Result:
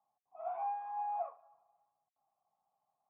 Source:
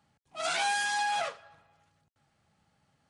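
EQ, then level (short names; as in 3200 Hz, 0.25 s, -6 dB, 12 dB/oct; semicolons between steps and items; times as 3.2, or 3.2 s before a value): vocal tract filter a; HPF 280 Hz 6 dB/oct; air absorption 410 m; +4.0 dB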